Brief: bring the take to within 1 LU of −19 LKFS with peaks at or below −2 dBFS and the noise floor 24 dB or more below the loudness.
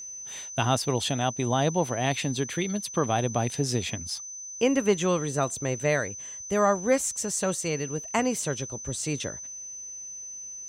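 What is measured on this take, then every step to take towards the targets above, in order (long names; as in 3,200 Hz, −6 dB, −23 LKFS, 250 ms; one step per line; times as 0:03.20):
interfering tone 6,100 Hz; level of the tone −37 dBFS; integrated loudness −28.0 LKFS; sample peak −9.5 dBFS; target loudness −19.0 LKFS
→ notch filter 6,100 Hz, Q 30
level +9 dB
brickwall limiter −2 dBFS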